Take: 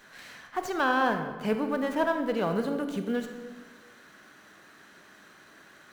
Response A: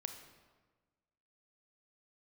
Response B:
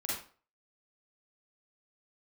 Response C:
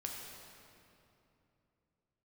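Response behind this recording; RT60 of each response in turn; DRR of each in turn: A; 1.4, 0.40, 2.9 seconds; 6.0, −7.0, −1.0 decibels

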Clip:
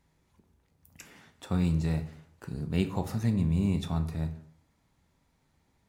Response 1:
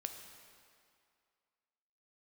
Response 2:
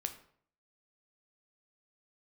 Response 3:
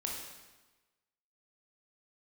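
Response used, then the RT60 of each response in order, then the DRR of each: 2; 2.3, 0.60, 1.2 seconds; 5.0, 6.5, −1.5 decibels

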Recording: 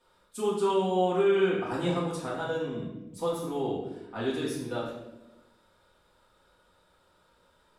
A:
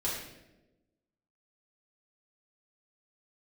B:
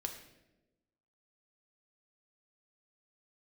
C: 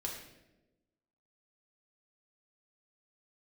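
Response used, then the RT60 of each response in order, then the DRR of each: A; 1.0, 1.0, 1.0 seconds; −7.5, 3.5, −1.5 decibels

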